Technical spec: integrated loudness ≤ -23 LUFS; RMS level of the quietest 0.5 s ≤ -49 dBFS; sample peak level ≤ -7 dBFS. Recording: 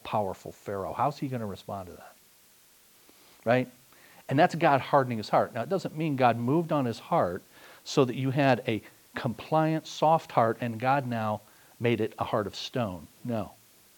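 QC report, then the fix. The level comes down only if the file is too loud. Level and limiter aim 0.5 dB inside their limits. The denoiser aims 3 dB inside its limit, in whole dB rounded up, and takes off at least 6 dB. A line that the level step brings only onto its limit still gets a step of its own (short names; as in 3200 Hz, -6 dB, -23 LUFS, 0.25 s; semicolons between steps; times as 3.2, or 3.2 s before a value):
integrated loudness -28.5 LUFS: OK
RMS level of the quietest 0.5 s -59 dBFS: OK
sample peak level -7.5 dBFS: OK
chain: none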